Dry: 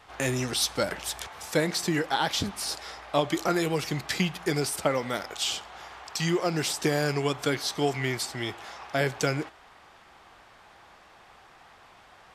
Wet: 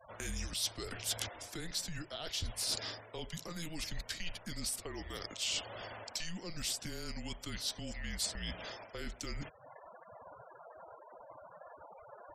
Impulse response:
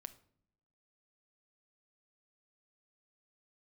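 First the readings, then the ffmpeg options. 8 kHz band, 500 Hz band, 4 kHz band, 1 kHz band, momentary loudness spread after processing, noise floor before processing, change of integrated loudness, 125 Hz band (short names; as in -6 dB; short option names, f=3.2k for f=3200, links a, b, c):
-6.0 dB, -19.0 dB, -7.0 dB, -17.0 dB, 18 LU, -55 dBFS, -11.0 dB, -14.0 dB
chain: -filter_complex "[0:a]afftfilt=real='re*gte(hypot(re,im),0.00562)':imag='im*gte(hypot(re,im),0.00562)':win_size=1024:overlap=0.75,areverse,acompressor=threshold=-36dB:ratio=12,areverse,adynamicequalizer=threshold=0.00112:dfrequency=1300:dqfactor=2:tfrequency=1300:tqfactor=2:attack=5:release=100:ratio=0.375:range=2.5:mode=cutabove:tftype=bell,acrossover=split=150|3000[a][b][c];[b]acompressor=threshold=-51dB:ratio=2.5[d];[a][d][c]amix=inputs=3:normalize=0,afreqshift=-170,volume=4.5dB"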